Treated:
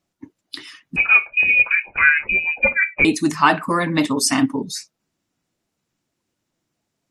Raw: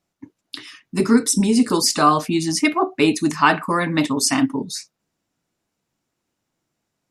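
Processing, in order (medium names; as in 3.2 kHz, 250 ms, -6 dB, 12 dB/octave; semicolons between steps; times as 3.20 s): coarse spectral quantiser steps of 15 dB; 0.96–3.05 s: frequency inversion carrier 2.7 kHz; trim +1 dB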